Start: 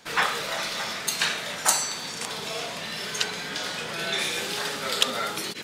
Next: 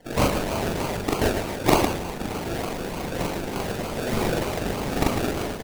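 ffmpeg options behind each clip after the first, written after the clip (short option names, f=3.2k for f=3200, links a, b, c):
-af "acrusher=samples=34:mix=1:aa=0.000001:lfo=1:lforange=20.4:lforate=3.3,aecho=1:1:40.82|151.6:1|0.501"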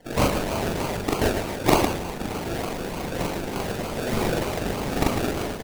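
-af anull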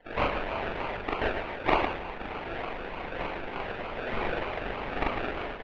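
-af "lowpass=f=2.8k:w=0.5412,lowpass=f=2.8k:w=1.3066,equalizer=f=150:w=0.36:g=-14.5"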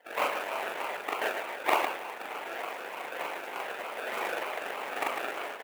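-af "acrusher=bits=4:mode=log:mix=0:aa=0.000001,highpass=500"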